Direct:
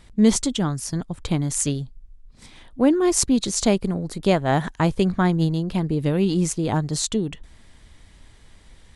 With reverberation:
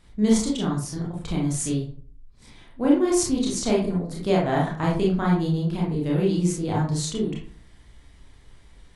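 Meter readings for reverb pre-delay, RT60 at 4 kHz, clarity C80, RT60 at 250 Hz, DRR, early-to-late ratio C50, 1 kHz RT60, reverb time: 25 ms, 0.25 s, 9.5 dB, 0.55 s, -3.5 dB, 3.5 dB, 0.45 s, 0.45 s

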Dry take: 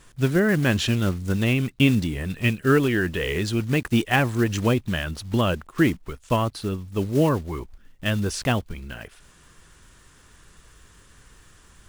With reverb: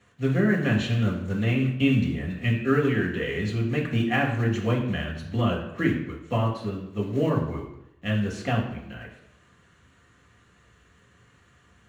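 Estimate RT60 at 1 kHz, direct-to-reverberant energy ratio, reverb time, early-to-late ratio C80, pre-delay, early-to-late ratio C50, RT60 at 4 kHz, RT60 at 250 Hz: 0.85 s, -2.5 dB, 0.85 s, 9.0 dB, 3 ms, 6.5 dB, 0.65 s, 0.75 s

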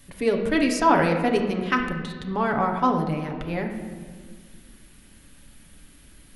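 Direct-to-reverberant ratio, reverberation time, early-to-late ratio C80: 1.5 dB, 1.7 s, 8.0 dB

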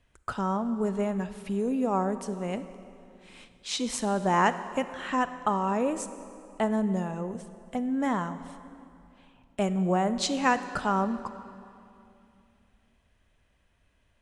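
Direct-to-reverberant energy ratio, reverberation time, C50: 11.5 dB, 2.7 s, 12.0 dB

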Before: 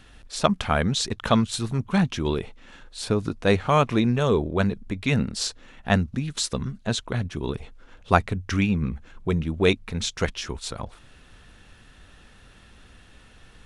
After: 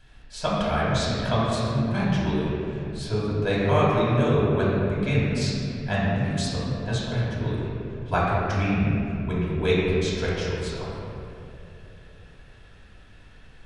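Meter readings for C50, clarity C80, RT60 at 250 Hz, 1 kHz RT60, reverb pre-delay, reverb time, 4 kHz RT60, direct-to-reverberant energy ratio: -2.5 dB, -1.0 dB, 3.2 s, 2.5 s, 3 ms, 3.0 s, 1.6 s, -8.0 dB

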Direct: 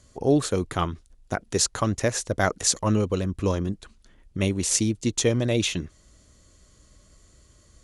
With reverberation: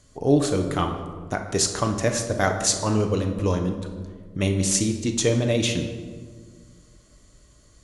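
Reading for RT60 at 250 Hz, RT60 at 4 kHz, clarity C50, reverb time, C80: 2.2 s, 0.95 s, 7.5 dB, 1.7 s, 9.5 dB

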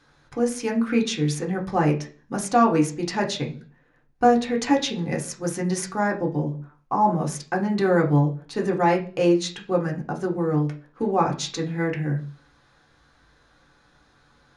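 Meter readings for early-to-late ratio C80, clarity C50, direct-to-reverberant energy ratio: 18.0 dB, 12.0 dB, -0.5 dB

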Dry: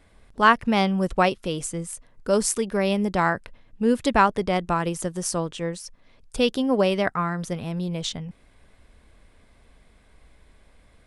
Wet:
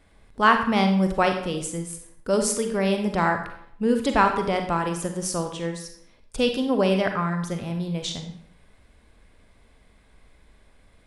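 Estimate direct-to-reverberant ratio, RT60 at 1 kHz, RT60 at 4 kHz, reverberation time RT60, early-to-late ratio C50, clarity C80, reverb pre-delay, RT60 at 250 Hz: 5.0 dB, 0.70 s, 0.50 s, 0.70 s, 6.5 dB, 10.0 dB, 37 ms, 0.70 s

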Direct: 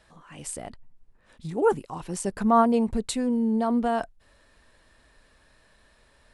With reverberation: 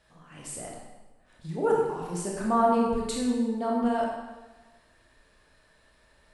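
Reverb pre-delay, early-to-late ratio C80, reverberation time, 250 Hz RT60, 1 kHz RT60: 20 ms, 3.0 dB, 1.2 s, 1.2 s, 1.2 s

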